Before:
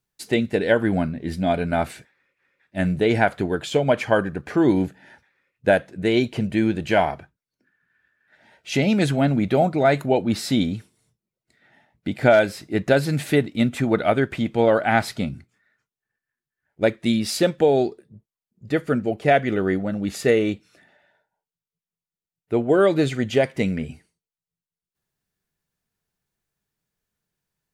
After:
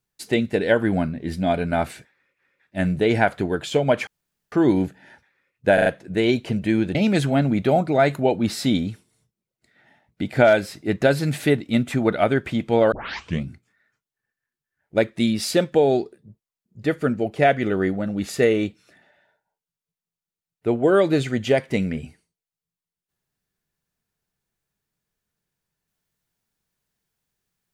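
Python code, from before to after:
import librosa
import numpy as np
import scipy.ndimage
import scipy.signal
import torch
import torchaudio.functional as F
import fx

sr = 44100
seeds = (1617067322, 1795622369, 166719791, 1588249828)

y = fx.edit(x, sr, fx.room_tone_fill(start_s=4.07, length_s=0.45),
    fx.stutter(start_s=5.74, slice_s=0.04, count=4),
    fx.cut(start_s=6.83, length_s=1.98),
    fx.tape_start(start_s=14.78, length_s=0.52), tone=tone)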